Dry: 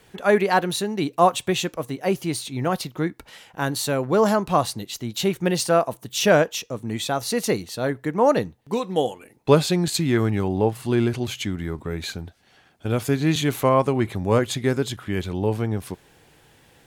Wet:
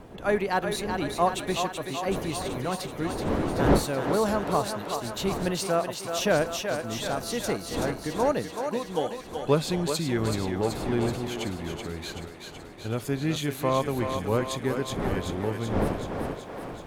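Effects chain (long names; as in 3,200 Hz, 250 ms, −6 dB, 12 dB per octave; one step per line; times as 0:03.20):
wind on the microphone 480 Hz −28 dBFS
feedback echo with a high-pass in the loop 379 ms, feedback 69%, high-pass 360 Hz, level −5.5 dB
level −7 dB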